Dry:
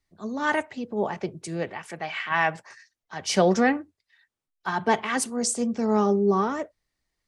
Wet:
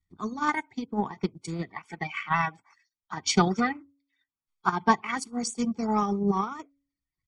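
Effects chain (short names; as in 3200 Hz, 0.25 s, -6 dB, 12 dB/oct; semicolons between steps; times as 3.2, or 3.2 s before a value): bin magnitudes rounded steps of 30 dB; LPF 7600 Hz 12 dB/oct; comb 0.9 ms, depth 83%; de-hum 279.9 Hz, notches 2; transient shaper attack +10 dB, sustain -8 dB; gain -6.5 dB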